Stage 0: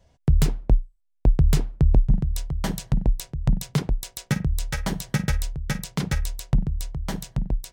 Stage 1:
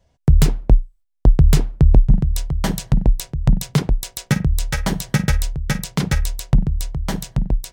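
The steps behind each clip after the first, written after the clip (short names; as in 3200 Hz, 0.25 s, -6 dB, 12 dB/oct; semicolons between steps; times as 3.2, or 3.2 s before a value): gate -48 dBFS, range -8 dB; gain +6 dB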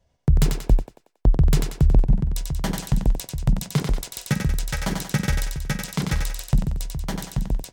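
thinning echo 92 ms, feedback 48%, high-pass 340 Hz, level -4 dB; gain -5 dB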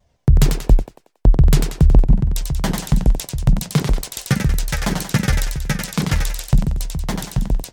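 shaped vibrato saw down 6.2 Hz, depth 160 cents; gain +5 dB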